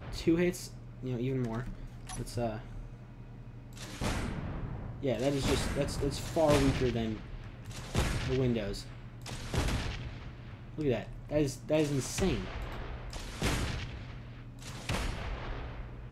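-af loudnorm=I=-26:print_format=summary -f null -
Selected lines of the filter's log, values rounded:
Input Integrated:    -34.5 LUFS
Input True Peak:     -13.7 dBTP
Input LRA:             6.9 LU
Input Threshold:     -45.3 LUFS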